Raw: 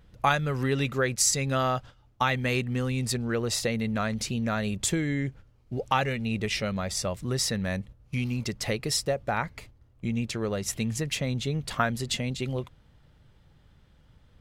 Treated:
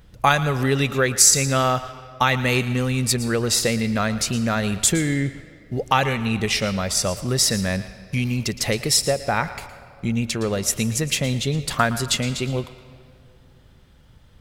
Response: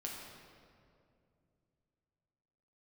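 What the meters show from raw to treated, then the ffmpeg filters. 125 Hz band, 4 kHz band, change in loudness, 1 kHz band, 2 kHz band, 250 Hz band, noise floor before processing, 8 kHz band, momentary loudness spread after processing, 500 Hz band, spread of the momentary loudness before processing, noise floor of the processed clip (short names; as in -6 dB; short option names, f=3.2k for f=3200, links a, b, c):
+6.0 dB, +8.5 dB, +7.5 dB, +6.5 dB, +7.0 dB, +6.0 dB, -60 dBFS, +10.5 dB, 8 LU, +6.0 dB, 7 LU, -51 dBFS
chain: -filter_complex "[0:a]highshelf=f=5.6k:g=6.5,asplit=2[a][b];[1:a]atrim=start_sample=2205,lowshelf=f=400:g=-11.5,adelay=114[c];[b][c]afir=irnorm=-1:irlink=0,volume=-10.5dB[d];[a][d]amix=inputs=2:normalize=0,volume=6dB"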